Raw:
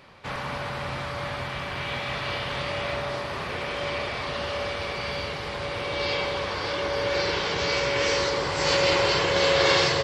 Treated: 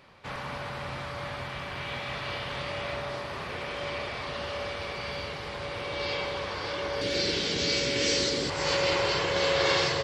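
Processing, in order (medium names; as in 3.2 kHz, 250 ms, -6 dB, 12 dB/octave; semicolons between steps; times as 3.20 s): 7.01–8.50 s: ten-band graphic EQ 250 Hz +11 dB, 1 kHz -10 dB, 4 kHz +5 dB, 8 kHz +9 dB; trim -4.5 dB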